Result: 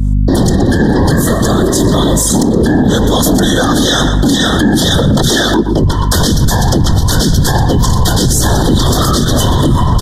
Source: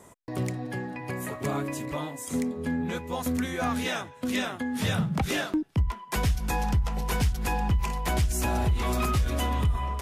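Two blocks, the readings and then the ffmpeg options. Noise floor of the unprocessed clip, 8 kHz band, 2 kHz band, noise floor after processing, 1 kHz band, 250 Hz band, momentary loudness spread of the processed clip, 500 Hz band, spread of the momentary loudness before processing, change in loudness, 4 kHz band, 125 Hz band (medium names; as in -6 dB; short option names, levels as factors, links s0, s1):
-48 dBFS, +22.0 dB, +14.5 dB, -12 dBFS, +15.0 dB, +19.5 dB, 1 LU, +19.5 dB, 6 LU, +18.0 dB, +22.5 dB, +17.5 dB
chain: -filter_complex "[0:a]agate=range=0.0224:threshold=0.0158:ratio=3:detection=peak,highshelf=f=3300:g=8.5,acrossover=split=480|5300[s0][s1][s2];[s0]aeval=exprs='0.141*sin(PI/2*2.82*val(0)/0.141)':c=same[s3];[s1]crystalizer=i=6:c=0[s4];[s3][s4][s2]amix=inputs=3:normalize=0,afftfilt=real='hypot(re,im)*cos(2*PI*random(0))':imag='hypot(re,im)*sin(2*PI*random(1))':win_size=512:overlap=0.75,asuperstop=centerf=2400:order=20:qfactor=2,aeval=exprs='val(0)+0.00891*(sin(2*PI*50*n/s)+sin(2*PI*2*50*n/s)/2+sin(2*PI*3*50*n/s)/3+sin(2*PI*4*50*n/s)/4+sin(2*PI*5*50*n/s)/5)':c=same,asplit=2[s5][s6];[s6]adelay=120,lowpass=f=3700:p=1,volume=0.2,asplit=2[s7][s8];[s8]adelay=120,lowpass=f=3700:p=1,volume=0.21[s9];[s5][s7][s9]amix=inputs=3:normalize=0,acompressor=threshold=0.0224:ratio=6,alimiter=level_in=39.8:limit=0.891:release=50:level=0:latency=1,volume=0.891"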